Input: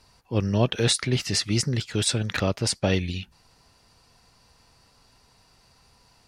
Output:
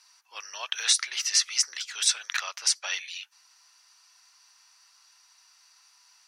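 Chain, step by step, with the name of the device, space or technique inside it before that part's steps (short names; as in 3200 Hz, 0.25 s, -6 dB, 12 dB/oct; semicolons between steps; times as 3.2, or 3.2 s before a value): headphones lying on a table (HPF 1100 Hz 24 dB/oct; bell 5900 Hz +10.5 dB 0.2 oct); 0.73–1.58 steep high-pass 320 Hz 36 dB/oct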